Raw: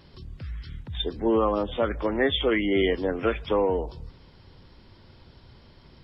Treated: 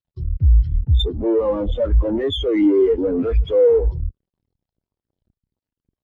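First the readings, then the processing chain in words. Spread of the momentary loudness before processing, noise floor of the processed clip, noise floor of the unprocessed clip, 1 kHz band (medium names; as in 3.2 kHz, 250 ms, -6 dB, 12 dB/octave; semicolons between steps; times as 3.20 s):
16 LU, under -85 dBFS, -53 dBFS, -6.0 dB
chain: level held to a coarse grid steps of 9 dB; fuzz box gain 50 dB, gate -49 dBFS; spectral contrast expander 2.5:1; trim +4 dB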